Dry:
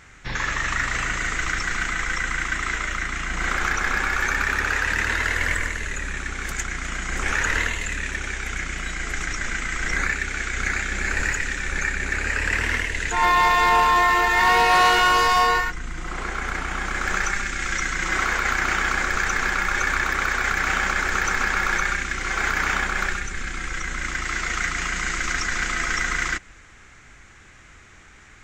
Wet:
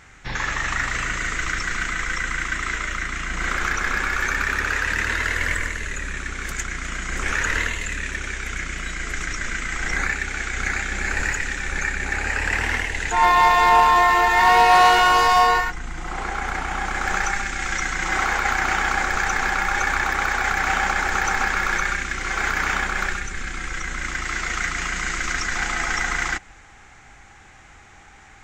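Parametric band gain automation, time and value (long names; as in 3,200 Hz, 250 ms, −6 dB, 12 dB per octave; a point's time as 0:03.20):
parametric band 800 Hz 0.31 octaves
+4.5 dB
from 0:00.90 −4 dB
from 0:09.70 +5.5 dB
from 0:12.05 +11.5 dB
from 0:21.48 +3.5 dB
from 0:25.55 +14 dB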